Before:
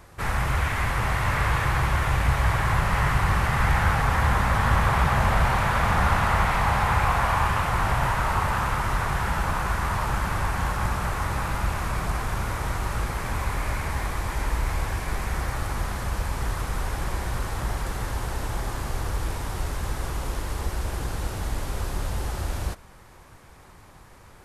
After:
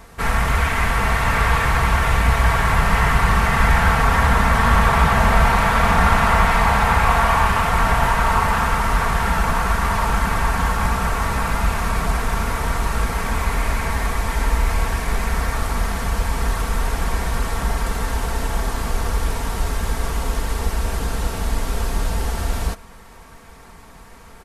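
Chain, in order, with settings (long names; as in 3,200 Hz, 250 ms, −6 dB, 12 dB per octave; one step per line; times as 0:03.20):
comb filter 4.4 ms, depth 56%
level +5.5 dB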